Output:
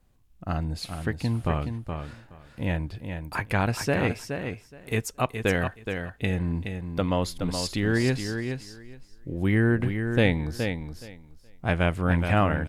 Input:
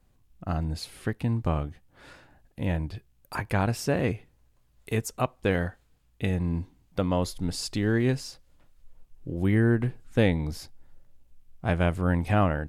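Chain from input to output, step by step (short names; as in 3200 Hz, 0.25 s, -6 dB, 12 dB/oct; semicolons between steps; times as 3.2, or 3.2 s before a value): dynamic EQ 2400 Hz, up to +5 dB, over -43 dBFS, Q 0.75; on a send: feedback echo 0.421 s, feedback 16%, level -7 dB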